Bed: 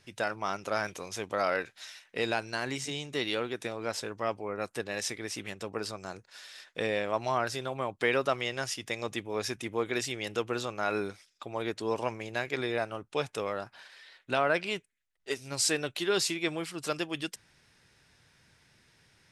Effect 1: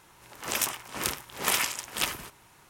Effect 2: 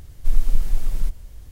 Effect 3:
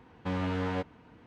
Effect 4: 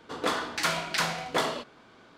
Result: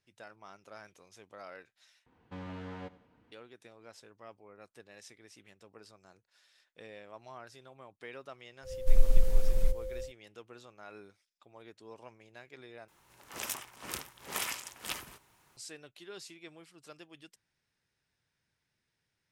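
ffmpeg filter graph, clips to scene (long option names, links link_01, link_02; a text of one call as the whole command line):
ffmpeg -i bed.wav -i cue0.wav -i cue1.wav -i cue2.wav -filter_complex "[0:a]volume=-19dB[link_01];[3:a]aecho=1:1:92|184|276:0.126|0.0478|0.0182[link_02];[2:a]aeval=exprs='val(0)+0.0224*sin(2*PI*520*n/s)':channel_layout=same[link_03];[1:a]acrusher=bits=10:mix=0:aa=0.000001[link_04];[link_01]asplit=3[link_05][link_06][link_07];[link_05]atrim=end=2.064[link_08];[link_02]atrim=end=1.26,asetpts=PTS-STARTPTS,volume=-11.5dB[link_09];[link_06]atrim=start=3.316:end=12.884[link_10];[link_04]atrim=end=2.69,asetpts=PTS-STARTPTS,volume=-9.5dB[link_11];[link_07]atrim=start=15.566[link_12];[link_03]atrim=end=1.51,asetpts=PTS-STARTPTS,volume=-5dB,afade=type=in:duration=0.1,afade=type=out:start_time=1.41:duration=0.1,adelay=8620[link_13];[link_08][link_09]acrossfade=duration=0.004:curve1=hsin:curve2=hsin[link_14];[link_14][link_10]acrossfade=duration=0.004:curve1=hsin:curve2=hsin[link_15];[link_15][link_11]acrossfade=duration=0.004:curve1=hsin:curve2=hsin[link_16];[link_16][link_12]acrossfade=duration=0.004:curve1=hsin:curve2=hsin[link_17];[link_17][link_13]amix=inputs=2:normalize=0" out.wav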